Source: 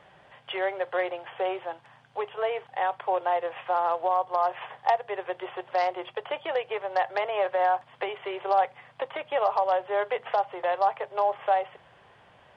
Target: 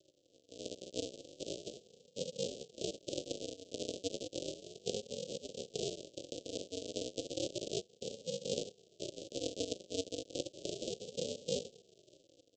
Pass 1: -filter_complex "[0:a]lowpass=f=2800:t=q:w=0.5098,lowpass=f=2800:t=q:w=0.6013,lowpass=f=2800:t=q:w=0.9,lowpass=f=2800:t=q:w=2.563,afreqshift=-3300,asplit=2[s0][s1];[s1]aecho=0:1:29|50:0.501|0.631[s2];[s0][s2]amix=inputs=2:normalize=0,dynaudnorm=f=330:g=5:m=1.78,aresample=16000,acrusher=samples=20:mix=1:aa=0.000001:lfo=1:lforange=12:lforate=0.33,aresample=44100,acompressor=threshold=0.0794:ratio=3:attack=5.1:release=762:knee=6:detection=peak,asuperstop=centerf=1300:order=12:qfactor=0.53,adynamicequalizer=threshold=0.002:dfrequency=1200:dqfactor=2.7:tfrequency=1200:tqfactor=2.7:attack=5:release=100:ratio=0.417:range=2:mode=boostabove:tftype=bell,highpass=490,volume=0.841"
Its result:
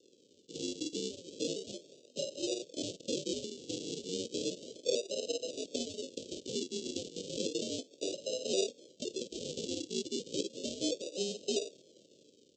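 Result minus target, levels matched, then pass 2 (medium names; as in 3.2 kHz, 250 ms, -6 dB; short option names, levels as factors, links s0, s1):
decimation with a swept rate: distortion -15 dB; 1 kHz band -5.5 dB
-filter_complex "[0:a]lowpass=f=2800:t=q:w=0.5098,lowpass=f=2800:t=q:w=0.6013,lowpass=f=2800:t=q:w=0.9,lowpass=f=2800:t=q:w=2.563,afreqshift=-3300,asplit=2[s0][s1];[s1]aecho=0:1:29|50:0.501|0.631[s2];[s0][s2]amix=inputs=2:normalize=0,dynaudnorm=f=330:g=5:m=1.78,aresample=16000,acrusher=samples=67:mix=1:aa=0.000001:lfo=1:lforange=40.2:lforate=0.33,aresample=44100,acompressor=threshold=0.0794:ratio=3:attack=5.1:release=762:knee=6:detection=peak,asuperstop=centerf=1300:order=12:qfactor=0.53,adynamicequalizer=threshold=0.002:dfrequency=1200:dqfactor=2.7:tfrequency=1200:tqfactor=2.7:attack=5:release=100:ratio=0.417:range=2:mode=boostabove:tftype=bell,highpass=490,equalizer=f=830:w=0.94:g=8,volume=0.841"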